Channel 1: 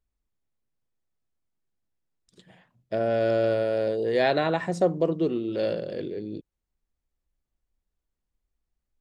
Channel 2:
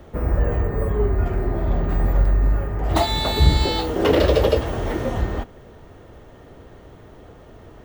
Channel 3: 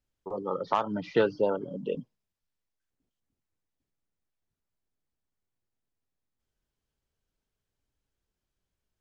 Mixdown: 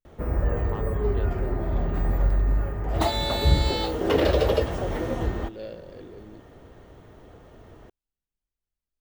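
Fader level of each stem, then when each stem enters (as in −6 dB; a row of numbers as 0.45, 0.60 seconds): −11.0, −4.5, −14.0 decibels; 0.00, 0.05, 0.00 seconds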